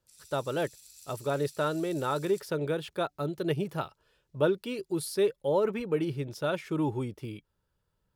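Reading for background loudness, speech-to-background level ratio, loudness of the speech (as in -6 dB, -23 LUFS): -51.0 LUFS, 19.5 dB, -31.5 LUFS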